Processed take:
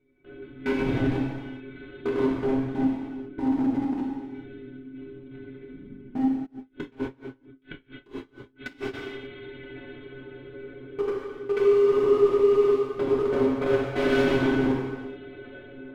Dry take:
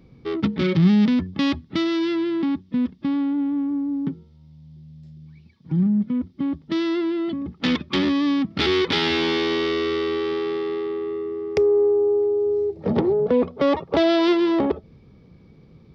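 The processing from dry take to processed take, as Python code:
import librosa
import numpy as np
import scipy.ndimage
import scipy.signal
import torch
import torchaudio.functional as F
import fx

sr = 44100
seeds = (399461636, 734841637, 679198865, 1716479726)

y = fx.echo_swing(x, sr, ms=1291, ratio=3, feedback_pct=66, wet_db=-20.0)
y = fx.lpc_vocoder(y, sr, seeds[0], excitation='whisper', order=8)
y = fx.high_shelf(y, sr, hz=2100.0, db=6.0)
y = fx.stiff_resonator(y, sr, f0_hz=130.0, decay_s=0.32, stiffness=0.008)
y = fx.small_body(y, sr, hz=(330.0, 1500.0, 2100.0), ring_ms=30, db=18)
y = fx.level_steps(y, sr, step_db=23)
y = np.clip(y, -10.0 ** (-23.5 / 20.0), 10.0 ** (-23.5 / 20.0))
y = fx.low_shelf(y, sr, hz=180.0, db=-3.0)
y = fx.rev_gated(y, sr, seeds[1], gate_ms=460, shape='falling', drr_db=-4.0)
y = fx.tremolo_db(y, sr, hz=4.4, depth_db=27, at=(6.45, 8.93), fade=0.02)
y = y * librosa.db_to_amplitude(-1.0)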